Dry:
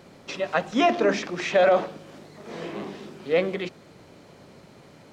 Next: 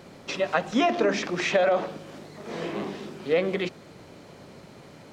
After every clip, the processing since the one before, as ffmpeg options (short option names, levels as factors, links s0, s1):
-af "acompressor=threshold=0.0891:ratio=6,volume=1.33"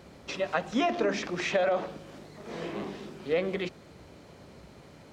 -af "equalizer=f=62:t=o:w=0.67:g=13.5,volume=0.596"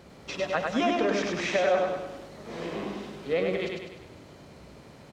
-af "aecho=1:1:100|200|300|400|500|600|700:0.708|0.361|0.184|0.0939|0.0479|0.0244|0.0125"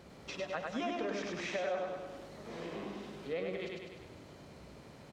-af "acompressor=threshold=0.00794:ratio=1.5,volume=0.631"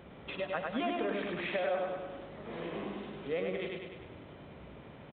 -af "aresample=8000,aresample=44100,volume=1.41"